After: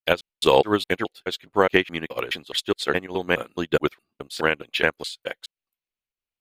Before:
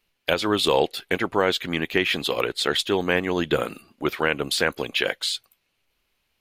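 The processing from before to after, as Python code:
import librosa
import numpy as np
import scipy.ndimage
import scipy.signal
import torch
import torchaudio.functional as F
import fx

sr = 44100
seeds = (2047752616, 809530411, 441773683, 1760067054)

y = fx.block_reorder(x, sr, ms=210.0, group=2)
y = fx.volume_shaper(y, sr, bpm=98, per_beat=1, depth_db=-9, release_ms=132.0, shape='fast start')
y = fx.upward_expand(y, sr, threshold_db=-36.0, expansion=2.5)
y = y * librosa.db_to_amplitude(5.0)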